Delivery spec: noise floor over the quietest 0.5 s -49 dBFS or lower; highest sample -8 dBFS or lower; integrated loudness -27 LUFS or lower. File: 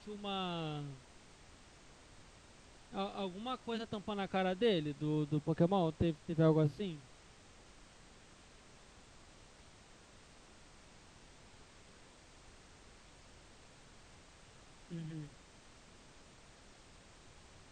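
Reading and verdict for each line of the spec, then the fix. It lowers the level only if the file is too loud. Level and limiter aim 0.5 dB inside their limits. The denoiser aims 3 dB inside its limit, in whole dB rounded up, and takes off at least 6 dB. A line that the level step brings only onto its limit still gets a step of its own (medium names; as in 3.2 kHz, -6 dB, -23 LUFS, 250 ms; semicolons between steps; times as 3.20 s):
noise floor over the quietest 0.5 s -60 dBFS: pass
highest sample -19.0 dBFS: pass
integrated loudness -37.0 LUFS: pass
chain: none needed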